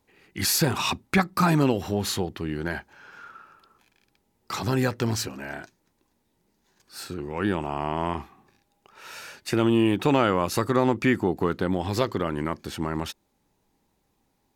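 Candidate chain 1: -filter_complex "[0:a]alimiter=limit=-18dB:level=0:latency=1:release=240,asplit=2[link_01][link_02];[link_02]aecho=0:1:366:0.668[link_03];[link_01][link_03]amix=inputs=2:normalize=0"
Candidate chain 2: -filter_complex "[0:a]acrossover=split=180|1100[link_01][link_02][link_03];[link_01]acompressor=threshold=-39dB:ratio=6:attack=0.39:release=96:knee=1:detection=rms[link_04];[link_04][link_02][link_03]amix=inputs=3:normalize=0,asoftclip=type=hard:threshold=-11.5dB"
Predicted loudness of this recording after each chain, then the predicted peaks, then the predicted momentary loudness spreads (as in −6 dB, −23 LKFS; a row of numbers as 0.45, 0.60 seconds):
−30.0, −26.5 LKFS; −13.5, −11.5 dBFS; 15, 18 LU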